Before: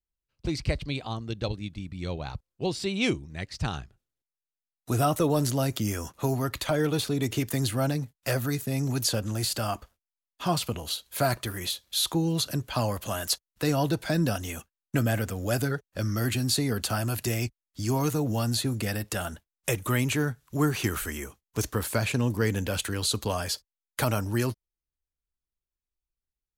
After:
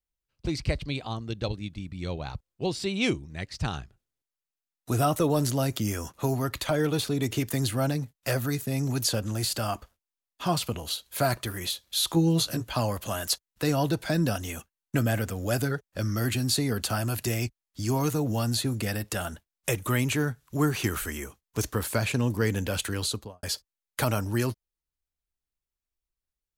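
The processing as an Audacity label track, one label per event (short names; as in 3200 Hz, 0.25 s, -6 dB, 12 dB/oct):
12.080000	12.730000	doubler 18 ms -4 dB
22.990000	23.430000	studio fade out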